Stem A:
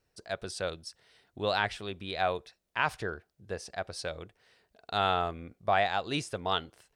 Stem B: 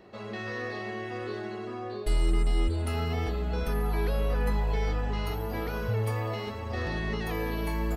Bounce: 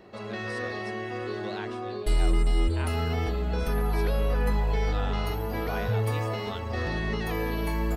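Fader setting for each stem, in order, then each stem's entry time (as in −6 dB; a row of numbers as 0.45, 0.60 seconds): −11.0, +2.0 decibels; 0.00, 0.00 seconds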